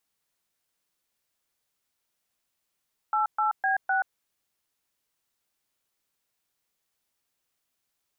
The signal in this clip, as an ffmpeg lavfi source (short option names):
-f lavfi -i "aevalsrc='0.0596*clip(min(mod(t,0.254),0.129-mod(t,0.254))/0.002,0,1)*(eq(floor(t/0.254),0)*(sin(2*PI*852*mod(t,0.254))+sin(2*PI*1336*mod(t,0.254)))+eq(floor(t/0.254),1)*(sin(2*PI*852*mod(t,0.254))+sin(2*PI*1336*mod(t,0.254)))+eq(floor(t/0.254),2)*(sin(2*PI*770*mod(t,0.254))+sin(2*PI*1633*mod(t,0.254)))+eq(floor(t/0.254),3)*(sin(2*PI*770*mod(t,0.254))+sin(2*PI*1477*mod(t,0.254))))':d=1.016:s=44100"